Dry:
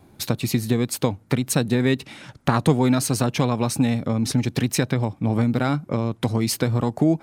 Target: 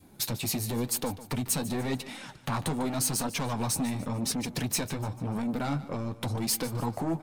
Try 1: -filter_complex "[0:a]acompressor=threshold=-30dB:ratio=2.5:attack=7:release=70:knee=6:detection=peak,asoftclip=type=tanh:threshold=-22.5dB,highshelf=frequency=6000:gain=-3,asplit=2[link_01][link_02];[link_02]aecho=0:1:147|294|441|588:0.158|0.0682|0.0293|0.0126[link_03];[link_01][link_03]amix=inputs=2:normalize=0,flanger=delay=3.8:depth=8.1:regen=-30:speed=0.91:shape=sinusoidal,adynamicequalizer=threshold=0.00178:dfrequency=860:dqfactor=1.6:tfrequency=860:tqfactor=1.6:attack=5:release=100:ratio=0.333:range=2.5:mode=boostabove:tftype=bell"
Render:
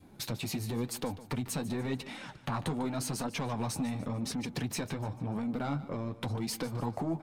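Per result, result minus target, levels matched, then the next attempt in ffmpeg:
downward compressor: peak gain reduction +5.5 dB; 8,000 Hz band −5.5 dB
-filter_complex "[0:a]acompressor=threshold=-20.5dB:ratio=2.5:attack=7:release=70:knee=6:detection=peak,asoftclip=type=tanh:threshold=-22.5dB,highshelf=frequency=6000:gain=-3,asplit=2[link_01][link_02];[link_02]aecho=0:1:147|294|441|588:0.158|0.0682|0.0293|0.0126[link_03];[link_01][link_03]amix=inputs=2:normalize=0,flanger=delay=3.8:depth=8.1:regen=-30:speed=0.91:shape=sinusoidal,adynamicequalizer=threshold=0.00178:dfrequency=860:dqfactor=1.6:tfrequency=860:tqfactor=1.6:attack=5:release=100:ratio=0.333:range=2.5:mode=boostabove:tftype=bell"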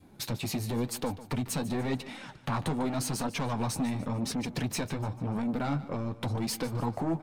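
8,000 Hz band −5.5 dB
-filter_complex "[0:a]acompressor=threshold=-20.5dB:ratio=2.5:attack=7:release=70:knee=6:detection=peak,asoftclip=type=tanh:threshold=-22.5dB,highshelf=frequency=6000:gain=8.5,asplit=2[link_01][link_02];[link_02]aecho=0:1:147|294|441|588:0.158|0.0682|0.0293|0.0126[link_03];[link_01][link_03]amix=inputs=2:normalize=0,flanger=delay=3.8:depth=8.1:regen=-30:speed=0.91:shape=sinusoidal,adynamicequalizer=threshold=0.00178:dfrequency=860:dqfactor=1.6:tfrequency=860:tqfactor=1.6:attack=5:release=100:ratio=0.333:range=2.5:mode=boostabove:tftype=bell"

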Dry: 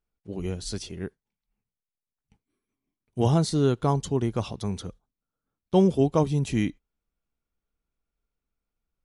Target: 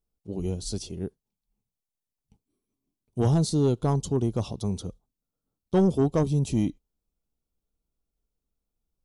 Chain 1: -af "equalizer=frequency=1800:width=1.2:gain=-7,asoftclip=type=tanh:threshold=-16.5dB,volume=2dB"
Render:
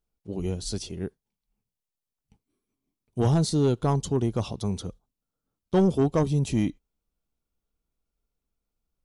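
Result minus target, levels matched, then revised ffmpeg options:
2,000 Hz band +3.5 dB
-af "equalizer=frequency=1800:width=1.2:gain=-16.5,asoftclip=type=tanh:threshold=-16.5dB,volume=2dB"

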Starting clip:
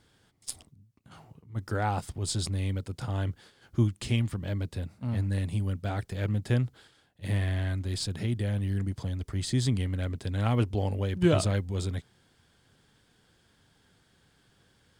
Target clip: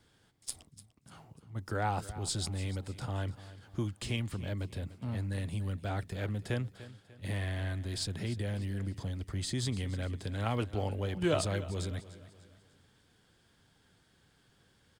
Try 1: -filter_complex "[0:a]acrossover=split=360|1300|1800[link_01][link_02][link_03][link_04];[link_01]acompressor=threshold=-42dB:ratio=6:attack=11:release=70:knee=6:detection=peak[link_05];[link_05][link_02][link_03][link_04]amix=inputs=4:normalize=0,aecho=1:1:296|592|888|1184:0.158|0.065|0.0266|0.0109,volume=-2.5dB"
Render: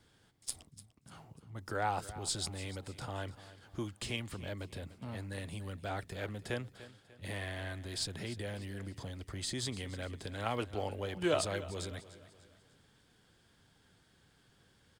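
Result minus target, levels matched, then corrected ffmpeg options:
downward compressor: peak gain reduction +9 dB
-filter_complex "[0:a]acrossover=split=360|1300|1800[link_01][link_02][link_03][link_04];[link_01]acompressor=threshold=-31dB:ratio=6:attack=11:release=70:knee=6:detection=peak[link_05];[link_05][link_02][link_03][link_04]amix=inputs=4:normalize=0,aecho=1:1:296|592|888|1184:0.158|0.065|0.0266|0.0109,volume=-2.5dB"

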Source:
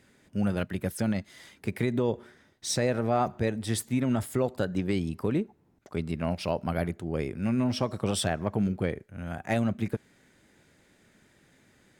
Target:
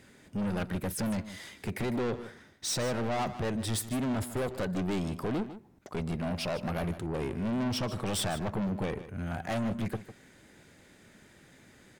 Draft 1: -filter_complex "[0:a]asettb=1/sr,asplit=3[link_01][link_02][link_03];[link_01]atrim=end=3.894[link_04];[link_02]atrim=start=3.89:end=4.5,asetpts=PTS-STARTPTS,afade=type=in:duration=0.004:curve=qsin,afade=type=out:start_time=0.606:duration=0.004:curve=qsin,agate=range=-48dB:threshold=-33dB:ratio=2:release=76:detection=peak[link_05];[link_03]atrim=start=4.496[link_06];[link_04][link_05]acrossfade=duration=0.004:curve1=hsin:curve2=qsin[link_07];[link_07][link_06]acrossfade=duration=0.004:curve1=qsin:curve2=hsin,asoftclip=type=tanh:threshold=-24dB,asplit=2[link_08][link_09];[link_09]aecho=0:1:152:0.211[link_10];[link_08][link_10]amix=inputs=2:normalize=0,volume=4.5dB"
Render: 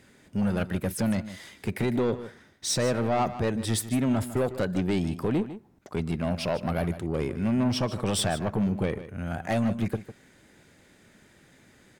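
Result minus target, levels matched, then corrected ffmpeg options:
soft clipping: distortion −6 dB
-filter_complex "[0:a]asettb=1/sr,asplit=3[link_01][link_02][link_03];[link_01]atrim=end=3.894[link_04];[link_02]atrim=start=3.89:end=4.5,asetpts=PTS-STARTPTS,afade=type=in:duration=0.004:curve=qsin,afade=type=out:start_time=0.606:duration=0.004:curve=qsin,agate=range=-48dB:threshold=-33dB:ratio=2:release=76:detection=peak[link_05];[link_03]atrim=start=4.496[link_06];[link_04][link_05]acrossfade=duration=0.004:curve1=hsin:curve2=qsin[link_07];[link_07][link_06]acrossfade=duration=0.004:curve1=qsin:curve2=hsin,asoftclip=type=tanh:threshold=-33dB,asplit=2[link_08][link_09];[link_09]aecho=0:1:152:0.211[link_10];[link_08][link_10]amix=inputs=2:normalize=0,volume=4.5dB"

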